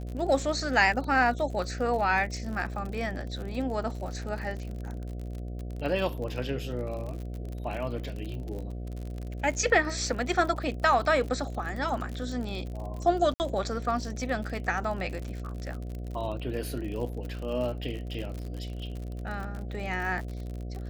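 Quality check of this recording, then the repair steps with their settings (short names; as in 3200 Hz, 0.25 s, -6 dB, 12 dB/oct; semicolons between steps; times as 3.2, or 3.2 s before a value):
buzz 60 Hz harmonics 12 -36 dBFS
crackle 55/s -35 dBFS
13.34–13.4 gap 59 ms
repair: de-click; de-hum 60 Hz, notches 12; interpolate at 13.34, 59 ms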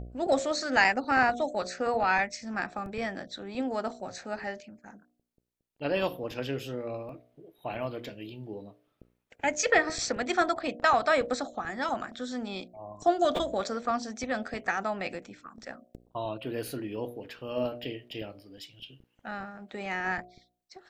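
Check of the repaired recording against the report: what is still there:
none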